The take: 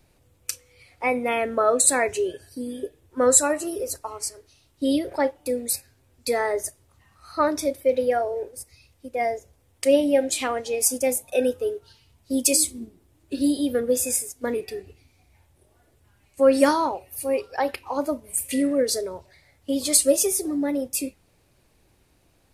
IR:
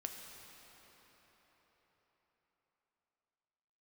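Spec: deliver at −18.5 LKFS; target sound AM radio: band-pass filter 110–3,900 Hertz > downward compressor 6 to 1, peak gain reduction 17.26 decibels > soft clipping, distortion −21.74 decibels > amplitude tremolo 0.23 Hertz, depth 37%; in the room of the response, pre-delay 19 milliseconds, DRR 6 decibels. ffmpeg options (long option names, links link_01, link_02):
-filter_complex "[0:a]asplit=2[link_01][link_02];[1:a]atrim=start_sample=2205,adelay=19[link_03];[link_02][link_03]afir=irnorm=-1:irlink=0,volume=-4.5dB[link_04];[link_01][link_04]amix=inputs=2:normalize=0,highpass=110,lowpass=3900,acompressor=threshold=-29dB:ratio=6,asoftclip=threshold=-22.5dB,tremolo=f=0.23:d=0.37,volume=18.5dB"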